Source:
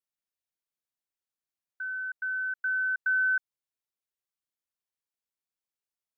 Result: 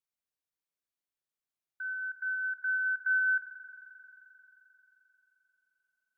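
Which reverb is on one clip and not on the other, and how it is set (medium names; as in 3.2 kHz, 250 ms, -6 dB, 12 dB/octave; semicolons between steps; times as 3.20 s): spring tank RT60 4 s, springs 42 ms, chirp 80 ms, DRR 4 dB; trim -3 dB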